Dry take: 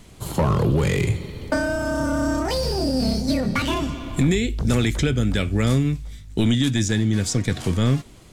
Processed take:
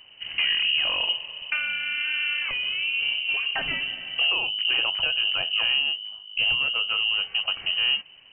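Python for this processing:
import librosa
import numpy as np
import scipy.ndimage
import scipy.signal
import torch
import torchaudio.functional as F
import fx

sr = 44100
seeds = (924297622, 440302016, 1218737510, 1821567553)

y = fx.freq_invert(x, sr, carrier_hz=3000)
y = y * 10.0 ** (-5.0 / 20.0)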